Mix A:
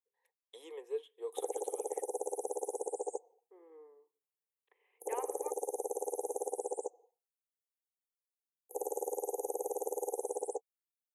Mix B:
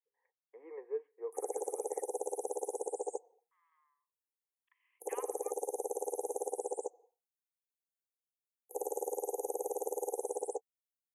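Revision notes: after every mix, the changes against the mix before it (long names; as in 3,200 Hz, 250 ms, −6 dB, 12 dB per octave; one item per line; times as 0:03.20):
first voice: add Butterworth low-pass 2,200 Hz 72 dB per octave
second voice: add Chebyshev band-pass filter 1,000–3,400 Hz, order 5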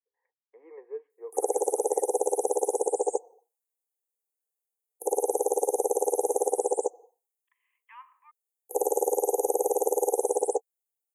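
second voice: entry +2.80 s
background +11.5 dB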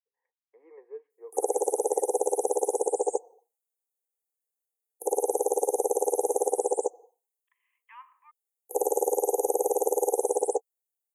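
first voice −4.0 dB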